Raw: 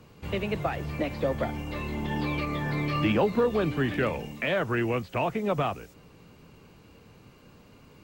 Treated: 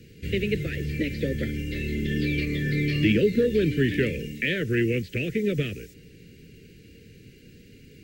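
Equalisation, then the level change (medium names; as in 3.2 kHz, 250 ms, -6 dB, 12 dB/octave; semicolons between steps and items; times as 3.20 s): elliptic band-stop 450–1800 Hz, stop band 80 dB; +5.0 dB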